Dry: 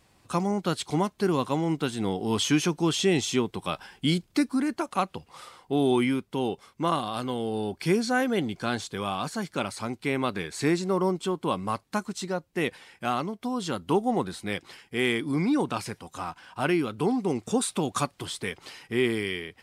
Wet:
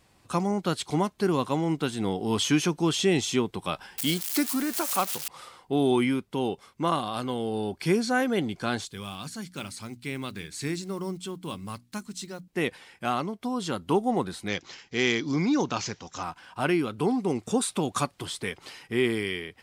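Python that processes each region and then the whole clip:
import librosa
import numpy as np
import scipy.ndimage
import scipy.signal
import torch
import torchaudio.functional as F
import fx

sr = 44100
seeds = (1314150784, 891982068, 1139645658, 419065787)

y = fx.chain(x, sr, fx.crossing_spikes(level_db=-21.0),
    fx.highpass(hz=250.0, slope=6), at=(3.98, 5.28))
y = fx.chain(y, sr, fx.block_float(bits=7),
    fx.peak_eq(hz=720.0, db=-12.5, octaves=2.8),
    fx.hum_notches(base_hz=60, count=5), at=(8.85, 12.48))
y = fx.chain(y, sr, fx.high_shelf(hz=5600.0, db=10.0),
    fx.resample_bad(factor=3, down='none', up='filtered'), at=(14.48, 16.23))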